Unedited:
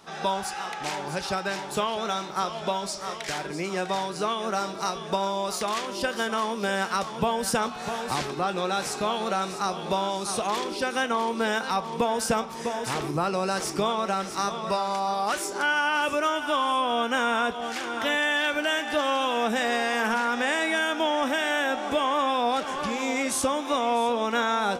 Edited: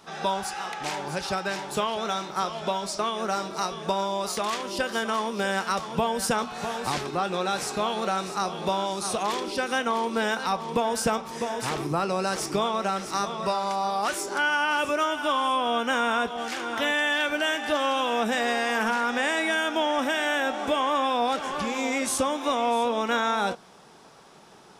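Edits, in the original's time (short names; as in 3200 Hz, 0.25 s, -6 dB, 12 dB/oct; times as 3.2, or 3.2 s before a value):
2.99–4.23 cut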